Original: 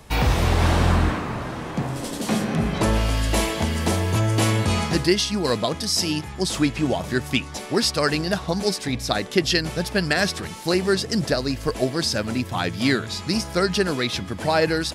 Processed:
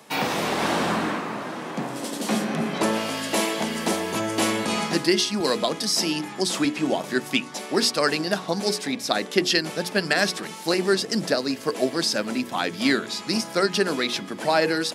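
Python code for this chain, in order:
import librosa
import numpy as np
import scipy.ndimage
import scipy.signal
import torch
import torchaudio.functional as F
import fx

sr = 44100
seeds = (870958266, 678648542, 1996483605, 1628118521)

y = scipy.signal.sosfilt(scipy.signal.butter(4, 190.0, 'highpass', fs=sr, output='sos'), x)
y = fx.hum_notches(y, sr, base_hz=60, count=8)
y = fx.band_squash(y, sr, depth_pct=40, at=(5.4, 6.65))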